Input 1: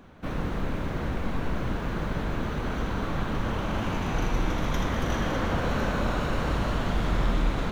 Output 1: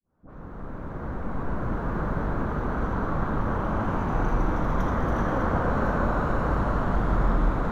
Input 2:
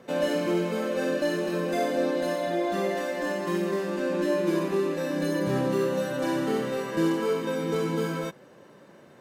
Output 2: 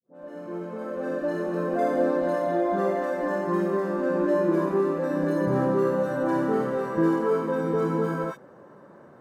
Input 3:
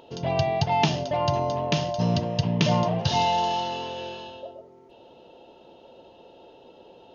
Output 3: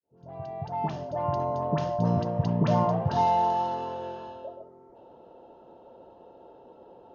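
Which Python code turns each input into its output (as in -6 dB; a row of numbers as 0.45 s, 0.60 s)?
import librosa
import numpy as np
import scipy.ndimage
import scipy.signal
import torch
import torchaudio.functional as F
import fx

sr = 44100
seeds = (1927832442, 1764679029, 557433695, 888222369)

y = fx.fade_in_head(x, sr, length_s=1.93)
y = fx.high_shelf_res(y, sr, hz=1900.0, db=-12.0, q=1.5)
y = fx.dispersion(y, sr, late='highs', ms=64.0, hz=1000.0)
y = librosa.util.normalize(y) * 10.0 ** (-12 / 20.0)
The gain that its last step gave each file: +2.0 dB, +2.0 dB, -1.5 dB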